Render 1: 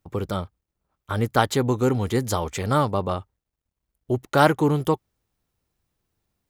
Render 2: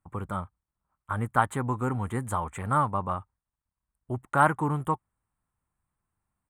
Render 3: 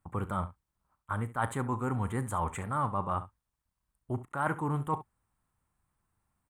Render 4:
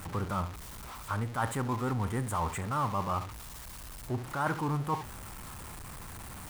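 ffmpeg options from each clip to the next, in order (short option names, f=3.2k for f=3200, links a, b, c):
-af "firequalizer=gain_entry='entry(190,0);entry(420,-8);entry(1000,7);entry(5100,-26);entry(8500,5);entry(12000,-9)':delay=0.05:min_phase=1,volume=-5.5dB"
-af "areverse,acompressor=threshold=-32dB:ratio=6,areverse,aecho=1:1:36|69:0.158|0.168,volume=3.5dB"
-af "aeval=exprs='val(0)+0.5*0.0158*sgn(val(0))':c=same,volume=-1.5dB"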